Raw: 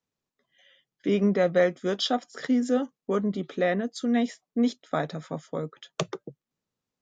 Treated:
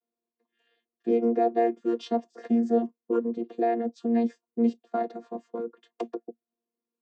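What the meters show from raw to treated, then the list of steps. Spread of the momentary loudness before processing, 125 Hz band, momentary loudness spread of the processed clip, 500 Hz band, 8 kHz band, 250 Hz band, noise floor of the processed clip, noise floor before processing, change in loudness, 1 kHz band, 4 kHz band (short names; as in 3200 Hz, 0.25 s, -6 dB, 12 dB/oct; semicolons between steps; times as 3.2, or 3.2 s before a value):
12 LU, under -10 dB, 13 LU, -0.5 dB, n/a, -0.5 dB, under -85 dBFS, under -85 dBFS, -0.5 dB, +3.5 dB, under -15 dB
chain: chord vocoder bare fifth, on A#3; bell 540 Hz +11 dB 0.98 oct; gain -3.5 dB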